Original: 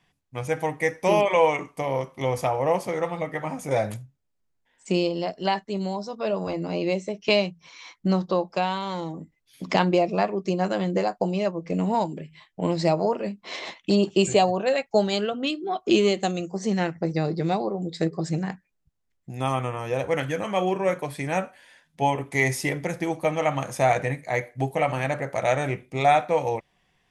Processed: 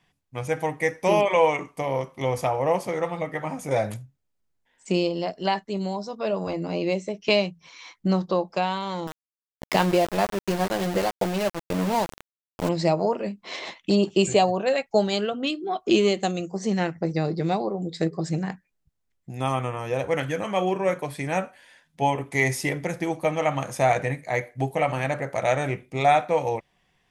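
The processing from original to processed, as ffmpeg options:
-filter_complex "[0:a]asettb=1/sr,asplit=3[a][b][c];[a]atrim=end=9.074[d];[b]atrim=start=9.07:end=12.69,asetpts=PTS-STARTPTS,afade=t=in:d=0.004:c=qsin,afade=t=out:st=3.616:d=0.004:c=qsin,aeval=exprs='val(0)*gte(abs(val(0)),0.0501)':c=same[e];[c]atrim=start=12.686[f];[d][e]acrossfade=d=0.004:c1=hsin:c2=qsin[g];[g][f]acrossfade=d=0.004:c1=qsin:c2=hsin"

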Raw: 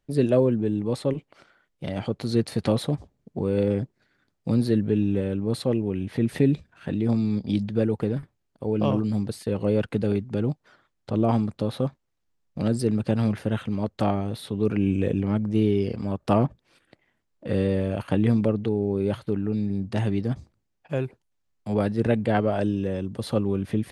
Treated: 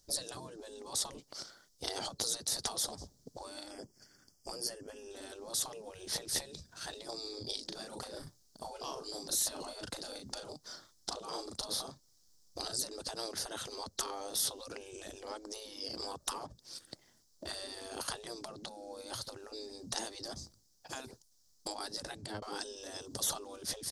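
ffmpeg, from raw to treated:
-filter_complex "[0:a]asettb=1/sr,asplit=3[a][b][c];[a]atrim=end=3.714[d];[b]atrim=start=3.71:end=5.11,asetpts=PTS-STARTPTS,afade=t=in:d=0.004:c=qsin,afade=t=out:st=1.396:d=0.004:c=qsin,asuperstop=centerf=3900:order=4:qfactor=2.6[e];[c]atrim=start=5.106[f];[d][e]acrossfade=d=0.004:c1=hsin:c2=qsin[g];[g][f]acrossfade=d=0.004:c1=qsin:c2=hsin,asplit=3[h][i][j];[h]afade=t=out:st=7.25:d=0.02[k];[i]asplit=2[l][m];[m]adelay=38,volume=-5dB[n];[l][n]amix=inputs=2:normalize=0,afade=t=in:st=7.25:d=0.02,afade=t=out:st=12.76:d=0.02[o];[j]afade=t=in:st=12.76:d=0.02[p];[k][o][p]amix=inputs=3:normalize=0,asplit=2[q][r];[q]atrim=end=22.42,asetpts=PTS-STARTPTS,afade=t=out:st=21.99:d=0.43[s];[r]atrim=start=22.42,asetpts=PTS-STARTPTS,afade=t=in:d=0.004:c=hsin[t];[s][t]concat=n=2:v=0:a=1,acompressor=threshold=-27dB:ratio=20,highshelf=f=3.6k:t=q:w=3:g=13.5,afftfilt=real='re*lt(hypot(re,im),0.0562)':imag='im*lt(hypot(re,im),0.0562)':win_size=1024:overlap=0.75,volume=2.5dB"

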